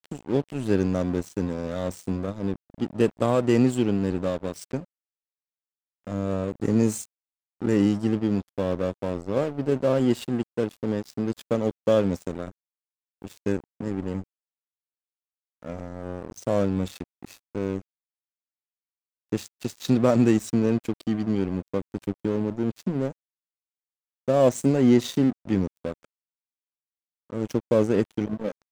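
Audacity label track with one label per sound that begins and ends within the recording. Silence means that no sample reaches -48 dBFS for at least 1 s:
6.070000	14.240000	sound
15.630000	17.820000	sound
19.320000	23.120000	sound
24.280000	26.050000	sound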